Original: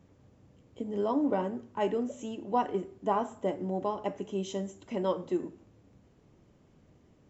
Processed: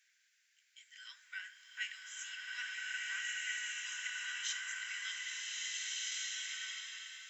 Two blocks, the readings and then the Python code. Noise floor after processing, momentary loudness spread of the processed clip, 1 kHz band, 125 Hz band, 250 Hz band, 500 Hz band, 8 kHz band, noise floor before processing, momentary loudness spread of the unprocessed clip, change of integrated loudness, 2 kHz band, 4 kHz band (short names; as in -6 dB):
-75 dBFS, 9 LU, -24.5 dB, under -40 dB, under -40 dB, under -40 dB, n/a, -63 dBFS, 8 LU, -7.0 dB, +12.0 dB, +11.5 dB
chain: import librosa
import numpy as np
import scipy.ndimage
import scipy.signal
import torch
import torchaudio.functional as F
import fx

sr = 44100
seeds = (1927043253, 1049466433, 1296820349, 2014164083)

y = scipy.signal.sosfilt(scipy.signal.cheby1(6, 3, 1500.0, 'highpass', fs=sr, output='sos'), x)
y = fx.rev_bloom(y, sr, seeds[0], attack_ms=1700, drr_db=-6.5)
y = F.gain(torch.from_numpy(y), 6.5).numpy()